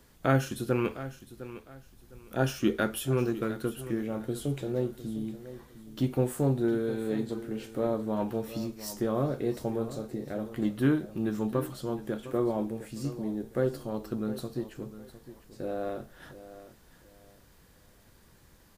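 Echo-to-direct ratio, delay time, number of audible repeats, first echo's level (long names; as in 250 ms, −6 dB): −14.0 dB, 707 ms, 2, −14.5 dB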